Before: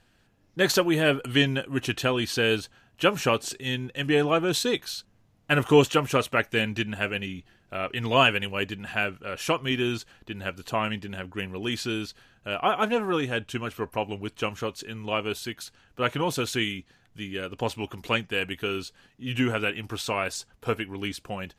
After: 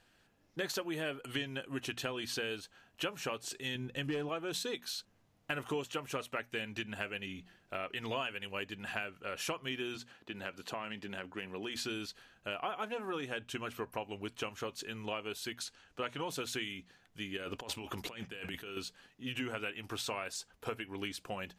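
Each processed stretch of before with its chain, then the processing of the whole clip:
3.75–4.29 s: bass shelf 330 Hz +8.5 dB + hard clipper -13 dBFS
9.95–11.76 s: high-pass 130 Hz + treble shelf 7.3 kHz -7 dB + compression 2.5:1, threshold -31 dBFS
15.59–16.30 s: low-pass 8.8 kHz + treble shelf 4.7 kHz +5 dB
17.37–18.77 s: expander -43 dBFS + compressor with a negative ratio -38 dBFS
whole clip: bass shelf 210 Hz -7.5 dB; compression 5:1, threshold -33 dBFS; hum notches 60/120/180/240 Hz; trim -2.5 dB

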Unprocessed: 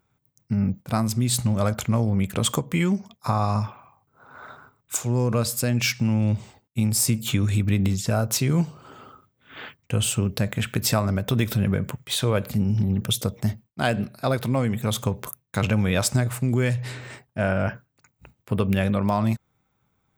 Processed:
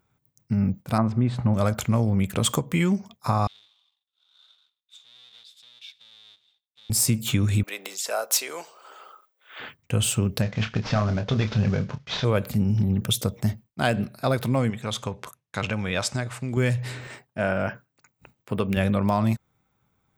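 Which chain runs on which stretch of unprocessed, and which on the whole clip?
0.98–1.54 s: low-pass 1.6 kHz + peaking EQ 930 Hz +6 dB 2.5 oct
3.47–6.90 s: square wave that keeps the level + compression 1.5:1, threshold -35 dBFS + band-pass filter 3.6 kHz, Q 17
7.63–9.60 s: high-pass 490 Hz 24 dB/octave + treble shelf 5.3 kHz +4 dB
10.42–12.25 s: CVSD coder 32 kbps + peaking EQ 330 Hz -6.5 dB 0.33 oct + doubling 28 ms -8.5 dB
14.70–16.57 s: low-pass 6.4 kHz + bass shelf 460 Hz -8.5 dB
17.07–18.77 s: high-pass 190 Hz 6 dB/octave + peaking EQ 12 kHz -7.5 dB 0.44 oct
whole clip: none

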